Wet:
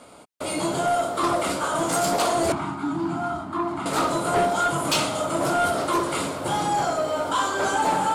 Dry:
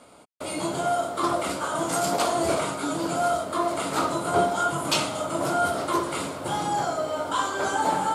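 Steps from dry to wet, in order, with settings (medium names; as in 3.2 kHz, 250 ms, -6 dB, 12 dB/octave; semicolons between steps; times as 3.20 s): 2.52–3.86 s: FFT filter 340 Hz 0 dB, 510 Hz -26 dB, 820 Hz -1 dB, 11 kHz -22 dB; saturation -19 dBFS, distortion -16 dB; trim +4 dB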